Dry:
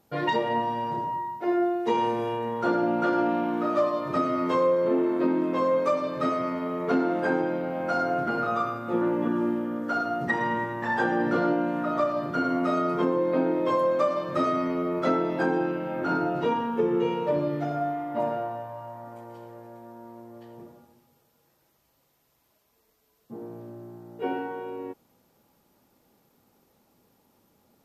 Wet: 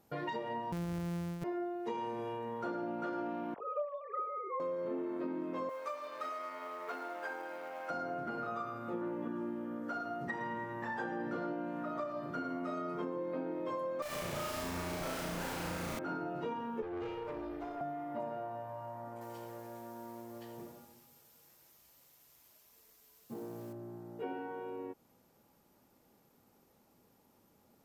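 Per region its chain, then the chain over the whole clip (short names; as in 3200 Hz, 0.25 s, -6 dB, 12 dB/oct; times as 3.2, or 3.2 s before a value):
0.72–1.44 sample sorter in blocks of 256 samples + low shelf 380 Hz +10 dB + hard clip -17 dBFS
3.54–4.6 sine-wave speech + notches 60/120/180/240/300/360/420/480/540 Hz
5.69–7.9 G.711 law mismatch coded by A + HPF 800 Hz
14.02–15.99 bell 310 Hz -11.5 dB 0.59 oct + Schmitt trigger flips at -36.5 dBFS + flutter echo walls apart 6 m, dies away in 1.1 s
16.82–17.81 steep high-pass 260 Hz 72 dB/oct + comb 2.5 ms, depth 50% + tube stage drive 26 dB, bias 0.75
19.21–23.73 high shelf 2100 Hz +11 dB + companded quantiser 6-bit
whole clip: bell 3700 Hz -2.5 dB; compressor 2.5:1, threshold -38 dBFS; gain -3 dB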